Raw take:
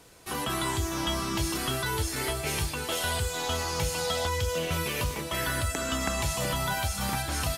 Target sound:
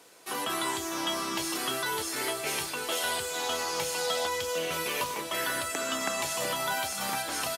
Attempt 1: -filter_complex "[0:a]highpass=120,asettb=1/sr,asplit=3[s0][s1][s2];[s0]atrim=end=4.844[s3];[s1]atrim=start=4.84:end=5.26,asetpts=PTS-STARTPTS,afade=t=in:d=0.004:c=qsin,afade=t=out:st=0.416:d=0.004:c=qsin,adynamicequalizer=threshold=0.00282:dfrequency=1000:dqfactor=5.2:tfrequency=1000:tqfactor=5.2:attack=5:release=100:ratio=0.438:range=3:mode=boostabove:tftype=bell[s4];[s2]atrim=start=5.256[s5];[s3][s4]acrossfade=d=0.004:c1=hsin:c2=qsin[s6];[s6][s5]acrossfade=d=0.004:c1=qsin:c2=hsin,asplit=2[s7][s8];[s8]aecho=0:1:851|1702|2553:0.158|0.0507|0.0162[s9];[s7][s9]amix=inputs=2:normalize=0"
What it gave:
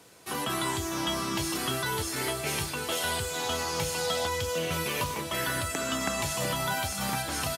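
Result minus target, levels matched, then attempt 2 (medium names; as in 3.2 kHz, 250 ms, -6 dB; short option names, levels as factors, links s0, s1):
125 Hz band +12.0 dB
-filter_complex "[0:a]highpass=310,asettb=1/sr,asplit=3[s0][s1][s2];[s0]atrim=end=4.844[s3];[s1]atrim=start=4.84:end=5.26,asetpts=PTS-STARTPTS,afade=t=in:d=0.004:c=qsin,afade=t=out:st=0.416:d=0.004:c=qsin,adynamicequalizer=threshold=0.00282:dfrequency=1000:dqfactor=5.2:tfrequency=1000:tqfactor=5.2:attack=5:release=100:ratio=0.438:range=3:mode=boostabove:tftype=bell[s4];[s2]atrim=start=5.256[s5];[s3][s4]acrossfade=d=0.004:c1=hsin:c2=qsin[s6];[s6][s5]acrossfade=d=0.004:c1=qsin:c2=hsin,asplit=2[s7][s8];[s8]aecho=0:1:851|1702|2553:0.158|0.0507|0.0162[s9];[s7][s9]amix=inputs=2:normalize=0"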